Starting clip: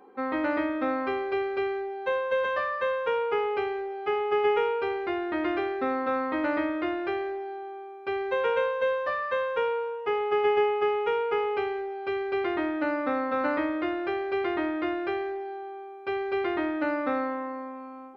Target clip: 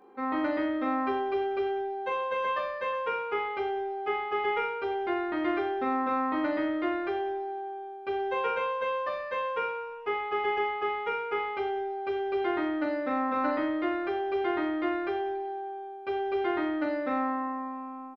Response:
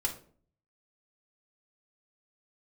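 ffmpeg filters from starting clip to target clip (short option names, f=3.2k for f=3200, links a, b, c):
-filter_complex "[0:a]aecho=1:1:20|42|66.2|92.82|122.1:0.631|0.398|0.251|0.158|0.1,asplit=2[a][b];[1:a]atrim=start_sample=2205,asetrate=31311,aresample=44100[c];[b][c]afir=irnorm=-1:irlink=0,volume=-16.5dB[d];[a][d]amix=inputs=2:normalize=0,volume=-5dB"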